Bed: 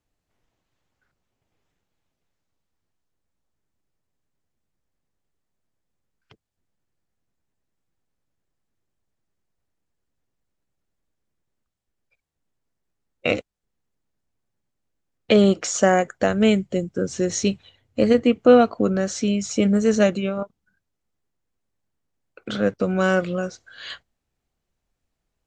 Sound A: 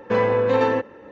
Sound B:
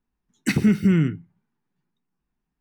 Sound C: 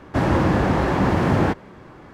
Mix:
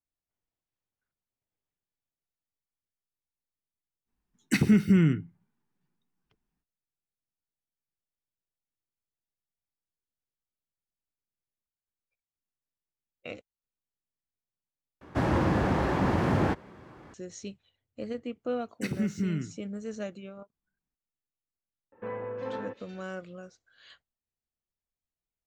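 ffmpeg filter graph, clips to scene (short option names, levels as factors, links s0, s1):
-filter_complex "[2:a]asplit=2[s0][s1];[0:a]volume=0.112[s2];[3:a]highpass=40[s3];[1:a]acrossover=split=2700[s4][s5];[s5]adelay=360[s6];[s4][s6]amix=inputs=2:normalize=0[s7];[s2]asplit=2[s8][s9];[s8]atrim=end=15.014[s10];[s3]atrim=end=2.13,asetpts=PTS-STARTPTS,volume=0.447[s11];[s9]atrim=start=17.136[s12];[s0]atrim=end=2.6,asetpts=PTS-STARTPTS,volume=0.708,afade=t=in:d=0.05,afade=t=out:st=2.55:d=0.05,adelay=178605S[s13];[s1]atrim=end=2.6,asetpts=PTS-STARTPTS,volume=0.251,afade=t=in:d=0.004:c=hsin,afade=t=out:st=2.596:d=0.004:c=hsin,adelay=18350[s14];[s7]atrim=end=1.11,asetpts=PTS-STARTPTS,volume=0.141,afade=t=in:d=0.004:c=hsin,afade=t=out:st=1.106:d=0.004:c=hsin,adelay=21920[s15];[s10][s11]acrossfade=d=0.004:c1=hsin:c2=hsin[s16];[s16][s12]acrossfade=d=0.004:c1=hsin:c2=hsin[s17];[s17][s13][s14][s15]amix=inputs=4:normalize=0"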